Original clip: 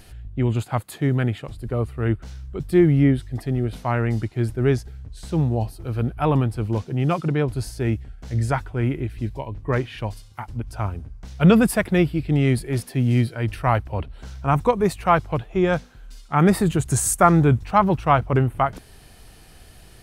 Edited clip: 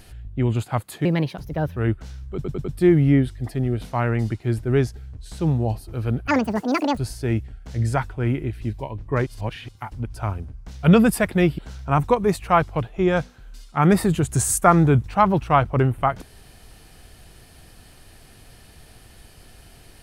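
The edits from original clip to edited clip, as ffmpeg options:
-filter_complex "[0:a]asplit=11[a][b][c][d][e][f][g][h][i][j][k];[a]atrim=end=1.054[l];[b]atrim=start=1.05:end=1.98,asetpts=PTS-STARTPTS,asetrate=57330,aresample=44100,atrim=end_sample=31548,asetpts=PTS-STARTPTS[m];[c]atrim=start=1.976:end=2.662[n];[d]atrim=start=2.558:end=2.662[o];[e]atrim=start=2.558:end=2.662[p];[f]atrim=start=2.558:end=6.194[q];[g]atrim=start=6.19:end=7.54,asetpts=PTS-STARTPTS,asetrate=85113,aresample=44100,atrim=end_sample=30847,asetpts=PTS-STARTPTS[r];[h]atrim=start=7.536:end=9.832[s];[i]atrim=start=9.828:end=10.252,asetpts=PTS-STARTPTS,areverse[t];[j]atrim=start=10.248:end=12.152[u];[k]atrim=start=14.148[v];[l][m]acrossfade=d=0.004:c1=hsin:c2=hsin[w];[w][n]acrossfade=d=0.004:c1=hsin:c2=hsin[x];[x][o]acrossfade=d=0.004:c1=hsin:c2=hsin[y];[y][p]acrossfade=d=0.004:c1=hsin:c2=hsin[z];[z][q]acrossfade=d=0.004:c1=hsin:c2=hsin[aa];[aa][r]acrossfade=d=0.004:c1=hsin:c2=hsin[ab];[ab][s]acrossfade=d=0.004:c1=hsin:c2=hsin[ac];[ac][t]acrossfade=d=0.004:c1=hsin:c2=hsin[ad];[ad][u]acrossfade=d=0.004:c1=hsin:c2=hsin[ae];[ae][v]acrossfade=d=0.004:c1=hsin:c2=hsin"

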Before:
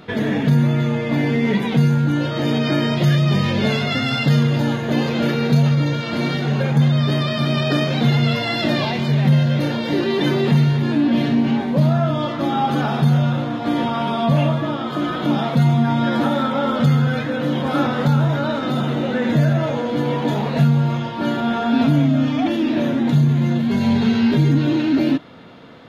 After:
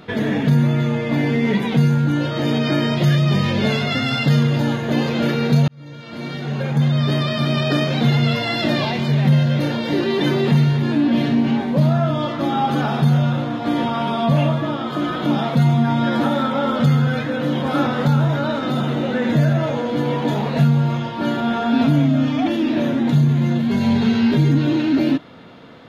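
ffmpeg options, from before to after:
-filter_complex "[0:a]asplit=2[a][b];[a]atrim=end=5.68,asetpts=PTS-STARTPTS,afade=t=out:st=5.676:d=0.004:c=hsin[c];[b]atrim=start=5.68,asetpts=PTS-STARTPTS,afade=t=in:d=1.42[d];[c][d]concat=n=2:v=0:a=1"

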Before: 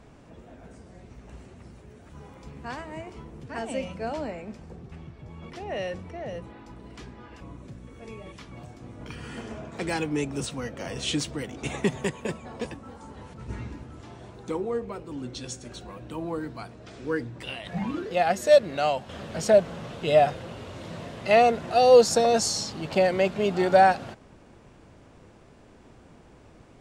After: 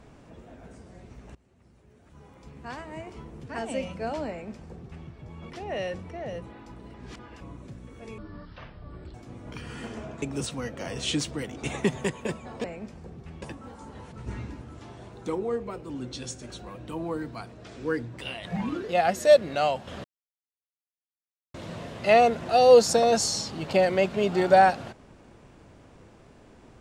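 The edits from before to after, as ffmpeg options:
-filter_complex "[0:a]asplit=11[a][b][c][d][e][f][g][h][i][j][k];[a]atrim=end=1.35,asetpts=PTS-STARTPTS,afade=t=out:st=1.346:d=0.004:c=hsin:silence=0.0891251[l];[b]atrim=start=1.35:end=6.942,asetpts=PTS-STARTPTS,afade=t=in:d=1.87:silence=0.0891251[m];[c]atrim=start=6.938:end=7.192,asetpts=PTS-STARTPTS,areverse[n];[d]atrim=start=7.188:end=8.184[o];[e]atrim=start=8.18:end=8.68,asetpts=PTS-STARTPTS,asetrate=22932,aresample=44100[p];[f]atrim=start=8.676:end=9.762[q];[g]atrim=start=10.218:end=12.642[r];[h]atrim=start=4.298:end=5.082[s];[i]atrim=start=12.638:end=19.26,asetpts=PTS-STARTPTS,afade=t=out:st=6.618:d=0.004:c=hsin[t];[j]atrim=start=19.26:end=20.76,asetpts=PTS-STARTPTS,volume=0[u];[k]atrim=start=20.76,asetpts=PTS-STARTPTS,afade=t=in:d=0.004:c=hsin[v];[l][m]concat=n=2:v=0:a=1[w];[w][n]acrossfade=d=0.004:c1=hsin:c2=hsin[x];[x][o]acrossfade=d=0.004:c1=hsin:c2=hsin[y];[y][p]acrossfade=d=0.004:c1=hsin:c2=hsin[z];[z][q]acrossfade=d=0.004:c1=hsin:c2=hsin[aa];[aa][r]acrossfade=d=0.004:c1=hsin:c2=hsin[ab];[ab][s]acrossfade=d=0.004:c1=hsin:c2=hsin[ac];[t][u][v]concat=n=3:v=0:a=1[ad];[ac][ad]acrossfade=d=0.004:c1=hsin:c2=hsin"

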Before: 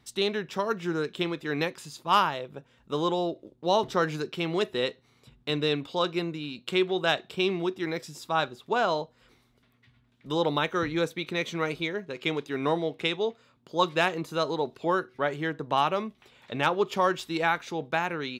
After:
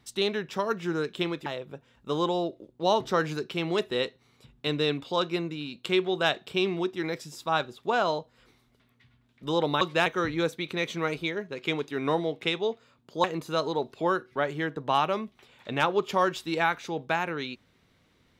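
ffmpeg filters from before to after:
-filter_complex "[0:a]asplit=5[a][b][c][d][e];[a]atrim=end=1.462[f];[b]atrim=start=2.288:end=10.642[g];[c]atrim=start=13.818:end=14.072[h];[d]atrim=start=10.638:end=13.822[i];[e]atrim=start=14.068[j];[f][g]acrossfade=d=0.004:c1=hsin:c2=hsin[k];[k][h]acrossfade=d=0.004:c1=hsin:c2=hsin[l];[l][i]acrossfade=d=0.004:c1=hsin:c2=hsin[m];[m][j]acrossfade=d=0.004:c1=hsin:c2=hsin"

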